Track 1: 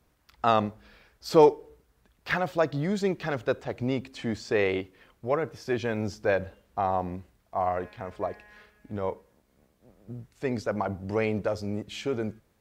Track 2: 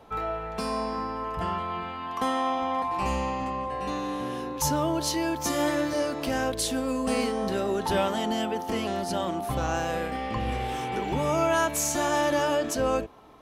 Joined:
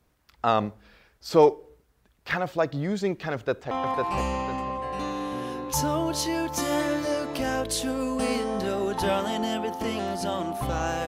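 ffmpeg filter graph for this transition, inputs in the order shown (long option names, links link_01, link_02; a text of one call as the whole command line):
ffmpeg -i cue0.wav -i cue1.wav -filter_complex "[0:a]apad=whole_dur=11.07,atrim=end=11.07,atrim=end=3.712[link_01];[1:a]atrim=start=2.588:end=9.95[link_02];[link_01][link_02]acrossfade=duration=0.004:curve1=hsin:curve2=hsin,asplit=2[link_03][link_04];[link_04]afade=type=in:start_time=3.33:duration=0.01,afade=type=out:start_time=3.71:duration=0.01,aecho=0:1:500|1000|1500|2000|2500:0.668344|0.23392|0.0818721|0.0286552|0.0100293[link_05];[link_03][link_05]amix=inputs=2:normalize=0" out.wav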